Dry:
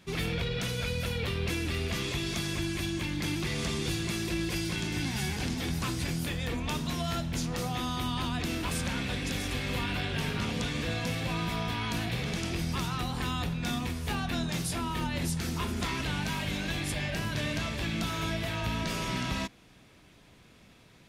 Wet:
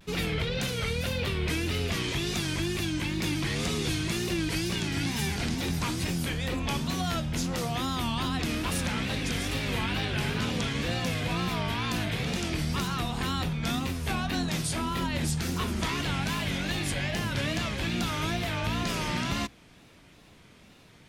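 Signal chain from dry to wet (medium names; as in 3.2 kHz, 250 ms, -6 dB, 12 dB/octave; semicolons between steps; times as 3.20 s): hum notches 60/120 Hz; wow and flutter 130 cents; trim +2.5 dB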